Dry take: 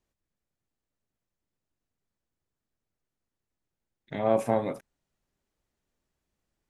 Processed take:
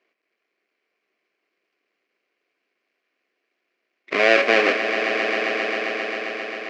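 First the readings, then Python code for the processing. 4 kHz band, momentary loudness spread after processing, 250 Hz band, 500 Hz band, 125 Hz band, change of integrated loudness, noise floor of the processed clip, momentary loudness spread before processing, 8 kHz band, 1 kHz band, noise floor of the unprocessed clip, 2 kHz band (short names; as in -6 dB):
+27.5 dB, 11 LU, +5.5 dB, +9.0 dB, n/a, +7.5 dB, -78 dBFS, 15 LU, +10.5 dB, +9.0 dB, under -85 dBFS, +29.0 dB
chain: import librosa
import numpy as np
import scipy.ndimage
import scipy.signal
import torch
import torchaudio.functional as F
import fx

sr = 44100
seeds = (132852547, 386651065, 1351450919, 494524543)

p1 = fx.halfwave_hold(x, sr)
p2 = fx.notch(p1, sr, hz=900.0, q=5.2)
p3 = fx.over_compress(p2, sr, threshold_db=-25.0, ratio=-0.5)
p4 = p2 + F.gain(torch.from_numpy(p3), -3.0).numpy()
p5 = fx.cabinet(p4, sr, low_hz=380.0, low_slope=24, high_hz=4100.0, hz=(560.0, 850.0, 1300.0, 2300.0, 3600.0), db=(-6, -6, -4, 8, -9))
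p6 = fx.echo_swell(p5, sr, ms=133, loudest=5, wet_db=-11.0)
y = F.gain(torch.from_numpy(p6), 7.5).numpy()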